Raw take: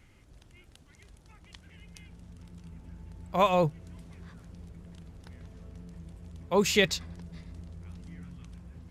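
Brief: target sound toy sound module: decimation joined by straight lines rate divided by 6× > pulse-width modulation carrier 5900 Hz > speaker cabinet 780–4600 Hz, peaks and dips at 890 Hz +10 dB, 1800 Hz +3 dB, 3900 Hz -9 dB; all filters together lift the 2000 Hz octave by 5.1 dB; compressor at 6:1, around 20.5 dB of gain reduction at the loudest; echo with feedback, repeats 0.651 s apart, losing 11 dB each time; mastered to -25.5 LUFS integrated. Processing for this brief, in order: bell 2000 Hz +4.5 dB; compressor 6:1, threshold -40 dBFS; feedback echo 0.651 s, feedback 28%, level -11 dB; decimation joined by straight lines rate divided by 6×; pulse-width modulation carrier 5900 Hz; speaker cabinet 780–4600 Hz, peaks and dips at 890 Hz +10 dB, 1800 Hz +3 dB, 3900 Hz -9 dB; gain +26.5 dB

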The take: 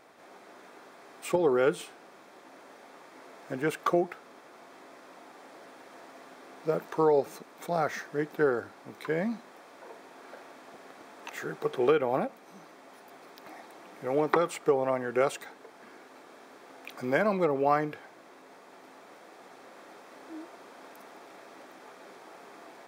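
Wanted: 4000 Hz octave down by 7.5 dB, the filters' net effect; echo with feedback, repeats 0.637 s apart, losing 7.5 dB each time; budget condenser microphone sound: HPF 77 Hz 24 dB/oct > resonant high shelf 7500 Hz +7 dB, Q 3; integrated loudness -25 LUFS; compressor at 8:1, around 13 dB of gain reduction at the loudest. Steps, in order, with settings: bell 4000 Hz -8 dB; compressor 8:1, threshold -33 dBFS; HPF 77 Hz 24 dB/oct; resonant high shelf 7500 Hz +7 dB, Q 3; feedback echo 0.637 s, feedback 42%, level -7.5 dB; gain +16.5 dB

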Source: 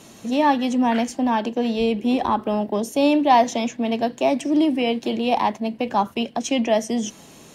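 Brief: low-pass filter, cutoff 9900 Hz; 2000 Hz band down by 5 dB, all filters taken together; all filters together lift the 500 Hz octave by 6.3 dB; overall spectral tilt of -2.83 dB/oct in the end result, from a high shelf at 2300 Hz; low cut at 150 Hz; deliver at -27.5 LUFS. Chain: HPF 150 Hz; LPF 9900 Hz; bell 500 Hz +8.5 dB; bell 2000 Hz -4.5 dB; high shelf 2300 Hz -4 dB; gain -9.5 dB

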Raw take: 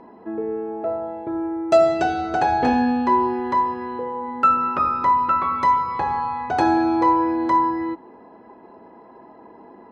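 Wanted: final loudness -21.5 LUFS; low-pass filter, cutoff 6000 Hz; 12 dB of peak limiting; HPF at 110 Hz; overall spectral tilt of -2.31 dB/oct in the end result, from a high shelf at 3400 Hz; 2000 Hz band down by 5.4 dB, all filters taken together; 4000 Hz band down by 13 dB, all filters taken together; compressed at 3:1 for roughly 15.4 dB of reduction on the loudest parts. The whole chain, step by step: HPF 110 Hz; LPF 6000 Hz; bell 2000 Hz -3.5 dB; high shelf 3400 Hz -7.5 dB; bell 4000 Hz -8.5 dB; compressor 3:1, threshold -33 dBFS; gain +17 dB; limiter -14 dBFS

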